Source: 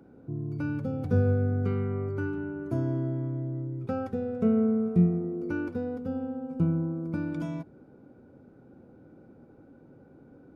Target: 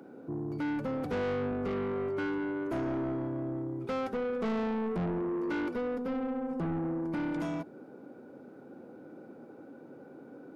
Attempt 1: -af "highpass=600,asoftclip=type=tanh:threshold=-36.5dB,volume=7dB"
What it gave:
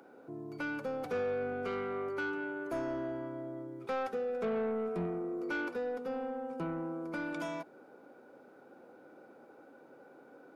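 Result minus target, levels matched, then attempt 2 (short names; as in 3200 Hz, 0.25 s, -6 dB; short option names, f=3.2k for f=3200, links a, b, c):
250 Hz band -3.5 dB
-af "highpass=270,asoftclip=type=tanh:threshold=-36.5dB,volume=7dB"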